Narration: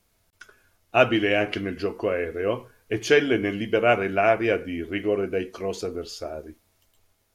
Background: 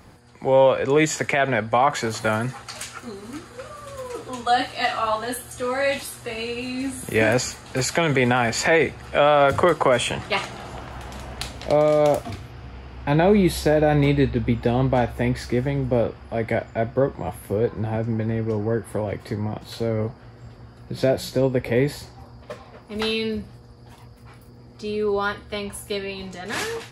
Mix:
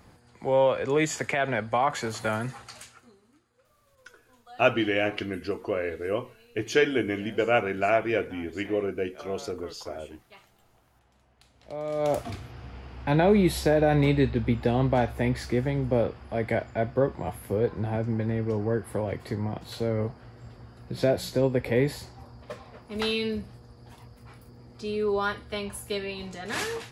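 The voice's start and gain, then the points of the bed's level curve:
3.65 s, −3.5 dB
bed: 0:02.61 −6 dB
0:03.38 −29 dB
0:11.43 −29 dB
0:12.19 −3.5 dB

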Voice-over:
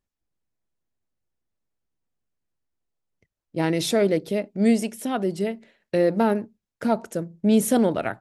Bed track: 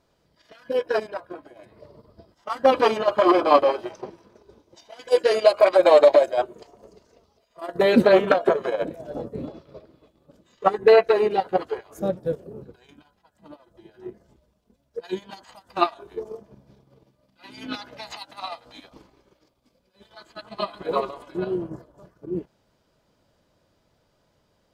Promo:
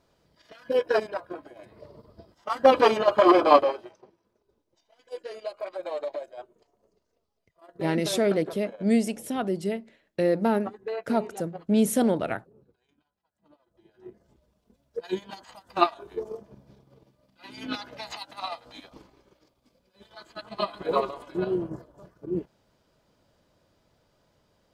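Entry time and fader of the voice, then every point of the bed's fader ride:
4.25 s, −3.0 dB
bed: 0:03.53 0 dB
0:04.06 −19 dB
0:13.26 −19 dB
0:14.62 −0.5 dB

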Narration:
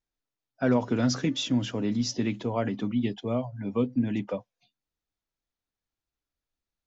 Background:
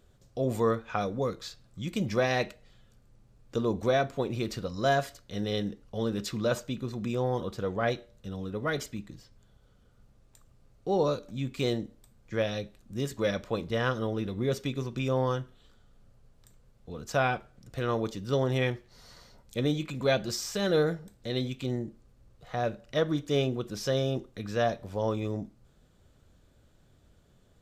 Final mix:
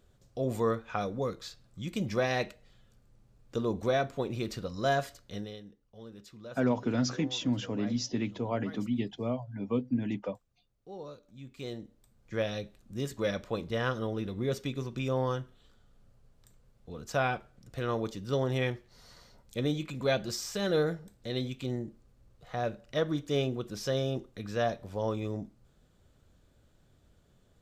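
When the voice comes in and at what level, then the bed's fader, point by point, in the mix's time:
5.95 s, −4.0 dB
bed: 0:05.34 −2.5 dB
0:05.60 −17.5 dB
0:11.15 −17.5 dB
0:12.36 −2.5 dB

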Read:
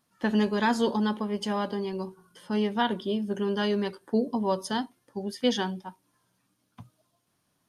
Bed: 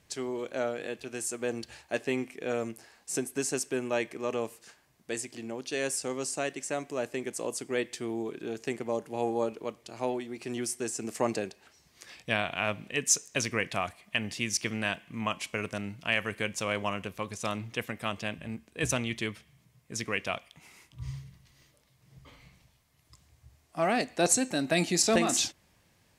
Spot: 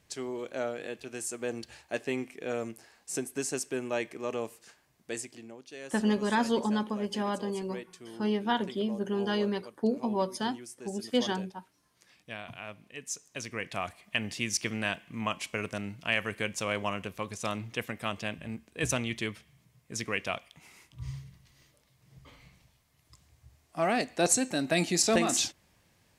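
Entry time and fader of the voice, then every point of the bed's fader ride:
5.70 s, −2.5 dB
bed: 0:05.21 −2 dB
0:05.65 −12.5 dB
0:13.17 −12.5 dB
0:13.96 −0.5 dB

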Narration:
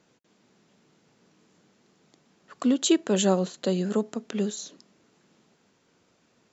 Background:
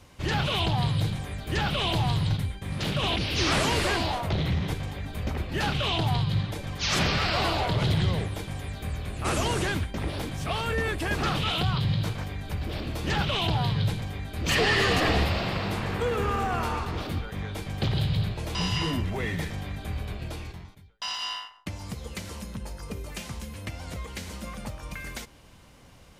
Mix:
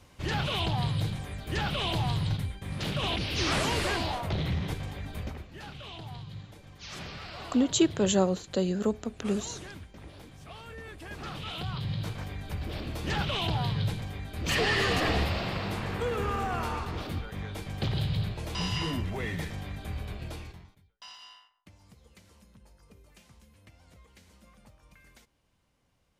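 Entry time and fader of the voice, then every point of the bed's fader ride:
4.90 s, −2.0 dB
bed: 0:05.19 −3.5 dB
0:05.52 −16.5 dB
0:10.82 −16.5 dB
0:12.30 −3.5 dB
0:20.36 −3.5 dB
0:21.40 −20 dB

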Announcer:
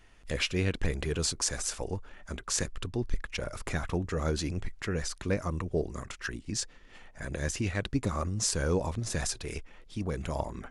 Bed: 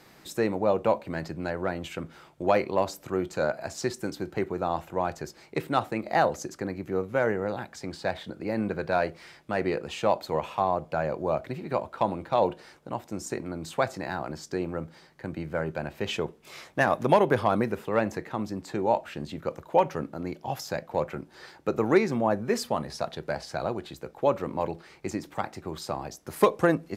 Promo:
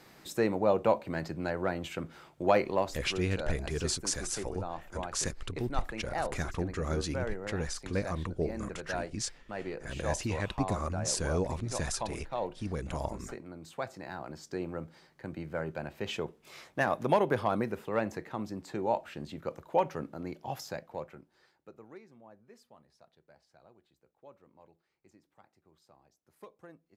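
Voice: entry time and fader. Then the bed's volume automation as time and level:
2.65 s, −2.5 dB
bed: 0:02.67 −2 dB
0:03.24 −11 dB
0:13.81 −11 dB
0:14.64 −5.5 dB
0:20.63 −5.5 dB
0:22.01 −30 dB

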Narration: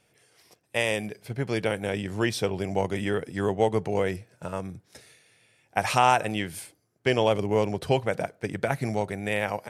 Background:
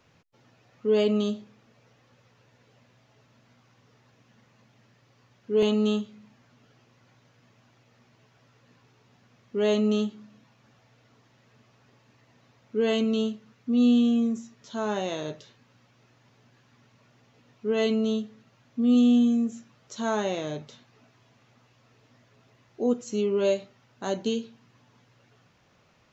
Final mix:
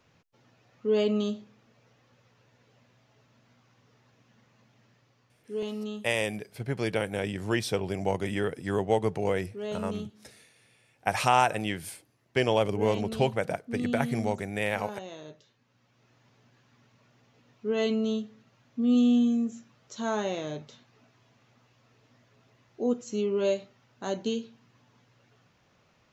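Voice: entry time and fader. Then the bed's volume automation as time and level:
5.30 s, −2.0 dB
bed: 0:04.94 −2.5 dB
0:05.68 −11.5 dB
0:15.50 −11.5 dB
0:16.15 −2.5 dB

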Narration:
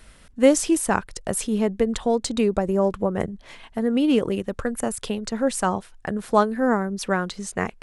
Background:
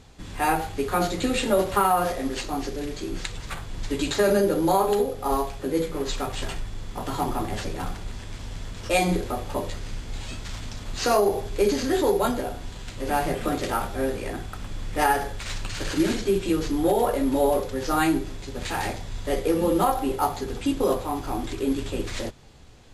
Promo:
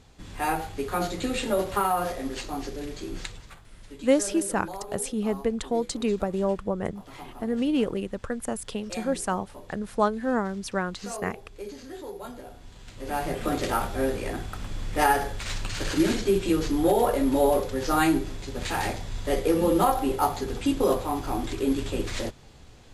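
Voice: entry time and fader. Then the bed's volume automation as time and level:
3.65 s, −5.0 dB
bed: 0:03.25 −4 dB
0:03.62 −17 dB
0:12.15 −17 dB
0:13.60 0 dB

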